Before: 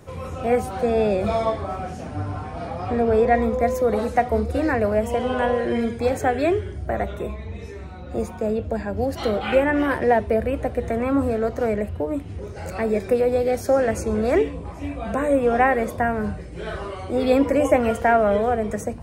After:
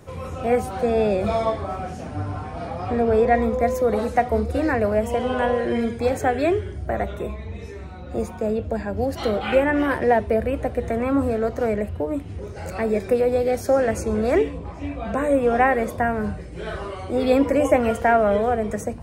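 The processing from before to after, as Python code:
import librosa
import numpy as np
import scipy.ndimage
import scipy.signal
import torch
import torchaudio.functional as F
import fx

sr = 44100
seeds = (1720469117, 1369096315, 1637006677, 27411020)

y = fx.lowpass(x, sr, hz=6400.0, slope=12, at=(14.58, 15.15))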